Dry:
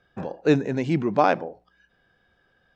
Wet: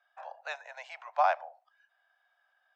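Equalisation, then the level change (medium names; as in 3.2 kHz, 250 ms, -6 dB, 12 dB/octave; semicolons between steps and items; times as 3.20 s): steep high-pass 630 Hz 72 dB/octave; treble shelf 2.4 kHz -8.5 dB; -3.5 dB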